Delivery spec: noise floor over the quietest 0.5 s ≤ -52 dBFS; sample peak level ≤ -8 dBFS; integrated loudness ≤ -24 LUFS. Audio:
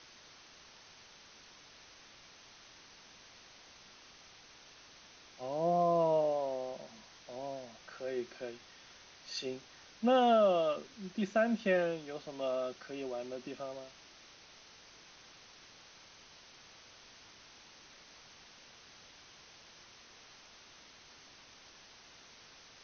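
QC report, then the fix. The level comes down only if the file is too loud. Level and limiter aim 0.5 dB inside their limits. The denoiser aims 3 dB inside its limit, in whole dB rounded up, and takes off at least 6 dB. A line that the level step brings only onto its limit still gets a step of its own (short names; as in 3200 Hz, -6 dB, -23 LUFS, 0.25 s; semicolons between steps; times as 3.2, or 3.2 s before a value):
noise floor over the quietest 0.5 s -58 dBFS: OK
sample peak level -19.0 dBFS: OK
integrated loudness -34.0 LUFS: OK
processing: none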